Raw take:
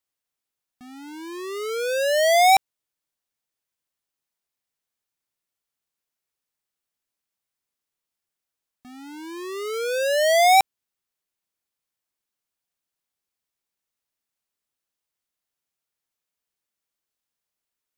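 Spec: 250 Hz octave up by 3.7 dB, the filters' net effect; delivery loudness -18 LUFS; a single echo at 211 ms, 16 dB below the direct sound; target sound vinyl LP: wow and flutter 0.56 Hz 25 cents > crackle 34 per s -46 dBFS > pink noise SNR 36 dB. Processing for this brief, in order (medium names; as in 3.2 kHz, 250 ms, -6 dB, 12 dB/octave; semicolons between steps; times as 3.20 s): peaking EQ 250 Hz +5.5 dB; delay 211 ms -16 dB; wow and flutter 0.56 Hz 25 cents; crackle 34 per s -46 dBFS; pink noise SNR 36 dB; trim +3 dB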